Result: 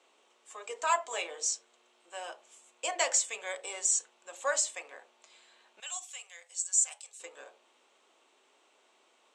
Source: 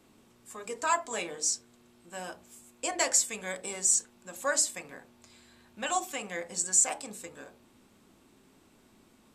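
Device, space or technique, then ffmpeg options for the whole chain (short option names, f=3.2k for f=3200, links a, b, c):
phone speaker on a table: -filter_complex "[0:a]highpass=f=470:w=0.5412,highpass=f=470:w=1.3066,equalizer=f=1.6k:t=q:w=4:g=-3,equalizer=f=3k:t=q:w=4:g=4,equalizer=f=4.9k:t=q:w=4:g=-6,lowpass=f=7.7k:w=0.5412,lowpass=f=7.7k:w=1.3066,asettb=1/sr,asplit=3[a][b][c];[a]atrim=end=5.804[d];[b]atrim=start=5.8:end=7.2,asetpts=PTS-STARTPTS,afade=t=in:d=0.004:c=qsin,afade=t=out:st=1.396:d=0.004:c=qsin,aderivative[e];[c]atrim=start=7.196[f];[d][e]acrossfade=d=0.004:c1=hsin:c2=qsin[g];[g][f]acrossfade=d=0.004:c1=qsin:c2=hsin"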